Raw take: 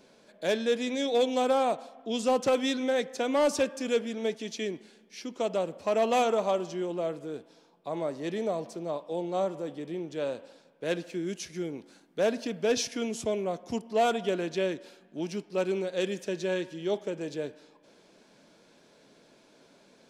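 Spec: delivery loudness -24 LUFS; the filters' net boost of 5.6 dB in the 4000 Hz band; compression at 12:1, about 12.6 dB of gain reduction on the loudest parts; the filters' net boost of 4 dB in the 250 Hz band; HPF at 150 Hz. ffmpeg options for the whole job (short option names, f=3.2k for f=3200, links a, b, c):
-af "highpass=150,equalizer=f=250:t=o:g=5.5,equalizer=f=4k:t=o:g=7,acompressor=threshold=-32dB:ratio=12,volume=13dB"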